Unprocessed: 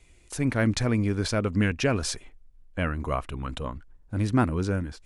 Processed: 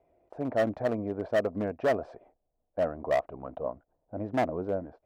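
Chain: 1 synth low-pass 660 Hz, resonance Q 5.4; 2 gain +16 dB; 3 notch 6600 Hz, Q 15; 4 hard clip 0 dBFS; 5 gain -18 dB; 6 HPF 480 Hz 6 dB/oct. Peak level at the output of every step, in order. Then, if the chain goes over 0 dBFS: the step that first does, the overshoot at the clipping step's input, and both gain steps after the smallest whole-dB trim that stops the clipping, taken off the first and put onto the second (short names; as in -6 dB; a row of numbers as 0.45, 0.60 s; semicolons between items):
-7.5, +8.5, +8.5, 0.0, -18.0, -14.5 dBFS; step 2, 8.5 dB; step 2 +7 dB, step 5 -9 dB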